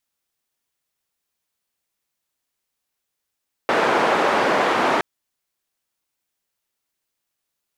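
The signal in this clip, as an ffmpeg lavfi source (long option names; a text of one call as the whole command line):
ffmpeg -f lavfi -i "anoisesrc=color=white:duration=1.32:sample_rate=44100:seed=1,highpass=frequency=320,lowpass=frequency=1100,volume=0.3dB" out.wav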